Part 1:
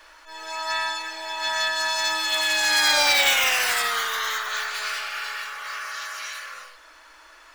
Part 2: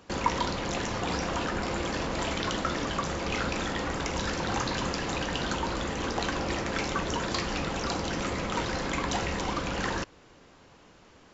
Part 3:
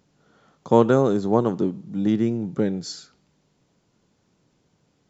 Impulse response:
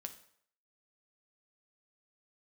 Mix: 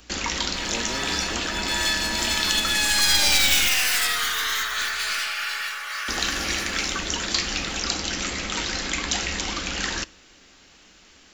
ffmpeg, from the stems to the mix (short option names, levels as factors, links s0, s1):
-filter_complex "[0:a]aeval=exprs='clip(val(0),-1,0.0501)':c=same,adelay=250,volume=1.26,asplit=2[s0][s1];[s1]volume=0.708[s2];[1:a]highshelf=f=2200:g=9,bandreject=f=1000:w=20,volume=1.19,asplit=3[s3][s4][s5];[s3]atrim=end=3.68,asetpts=PTS-STARTPTS,afade=t=out:st=3.676:d=0.004:c=hsin[s6];[s4]atrim=start=3.68:end=6.08,asetpts=PTS-STARTPTS,volume=0[s7];[s5]atrim=start=6.08,asetpts=PTS-STARTPTS,afade=t=in:d=0.004:c=hsin[s8];[s6][s7][s8]concat=n=3:v=0:a=1,asplit=2[s9][s10];[s10]volume=0.447[s11];[2:a]aeval=exprs='val(0)+0.0141*(sin(2*PI*60*n/s)+sin(2*PI*2*60*n/s)/2+sin(2*PI*3*60*n/s)/3+sin(2*PI*4*60*n/s)/4+sin(2*PI*5*60*n/s)/5)':c=same,volume=0.237,asplit=2[s12][s13];[s13]apad=whole_len=343648[s14];[s0][s14]sidechaincompress=threshold=0.0158:ratio=8:attack=16:release=159[s15];[3:a]atrim=start_sample=2205[s16];[s2][s11]amix=inputs=2:normalize=0[s17];[s17][s16]afir=irnorm=-1:irlink=0[s18];[s15][s9][s12][s18]amix=inputs=4:normalize=0,equalizer=f=125:t=o:w=1:g=-12,equalizer=f=500:t=o:w=1:g=-7,equalizer=f=1000:t=o:w=1:g=-6,acrossover=split=140|3000[s19][s20][s21];[s20]acompressor=threshold=0.0631:ratio=6[s22];[s19][s22][s21]amix=inputs=3:normalize=0"